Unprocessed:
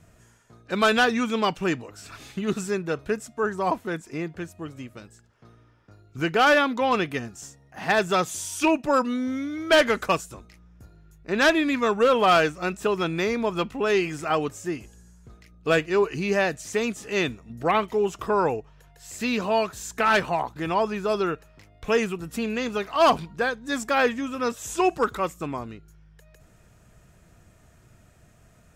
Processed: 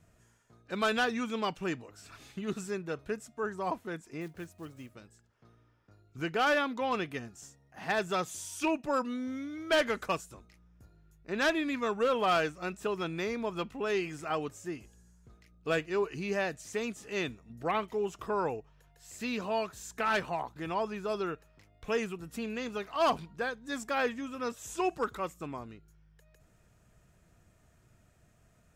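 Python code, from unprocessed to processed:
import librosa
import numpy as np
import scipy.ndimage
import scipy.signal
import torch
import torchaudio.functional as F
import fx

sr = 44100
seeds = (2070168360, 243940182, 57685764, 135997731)

y = fx.block_float(x, sr, bits=5, at=(4.21, 4.94))
y = F.gain(torch.from_numpy(y), -9.0).numpy()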